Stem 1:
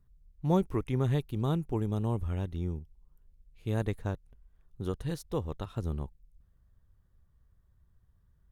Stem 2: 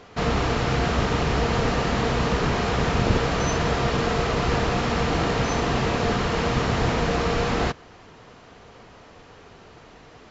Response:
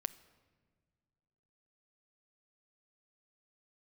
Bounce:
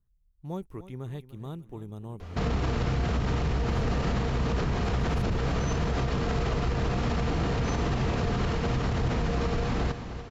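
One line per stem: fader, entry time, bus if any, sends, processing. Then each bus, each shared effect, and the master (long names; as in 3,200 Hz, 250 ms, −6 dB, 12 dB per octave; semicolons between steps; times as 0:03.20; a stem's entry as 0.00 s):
−9.5 dB, 0.00 s, no send, echo send −15 dB, high-shelf EQ 9,200 Hz +4 dB
−3.0 dB, 2.20 s, no send, echo send −15 dB, low-shelf EQ 230 Hz +10.5 dB; brickwall limiter −12.5 dBFS, peak gain reduction 12 dB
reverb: not used
echo: repeating echo 297 ms, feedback 46%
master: brickwall limiter −19.5 dBFS, peak gain reduction 7 dB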